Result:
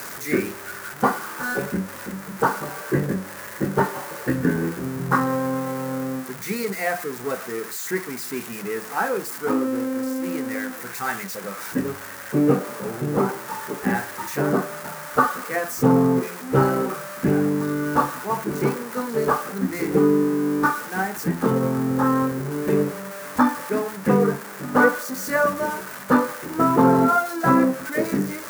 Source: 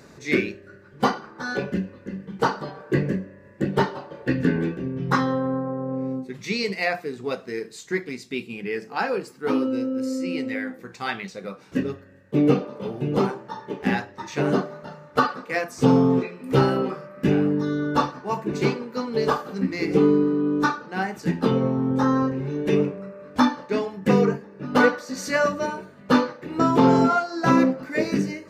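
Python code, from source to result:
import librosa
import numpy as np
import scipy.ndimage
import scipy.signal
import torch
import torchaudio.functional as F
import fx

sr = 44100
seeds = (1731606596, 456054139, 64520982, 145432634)

y = x + 0.5 * 10.0 ** (-13.0 / 20.0) * np.diff(np.sign(x), prepend=np.sign(x[:1]))
y = fx.high_shelf_res(y, sr, hz=2200.0, db=-12.0, q=1.5)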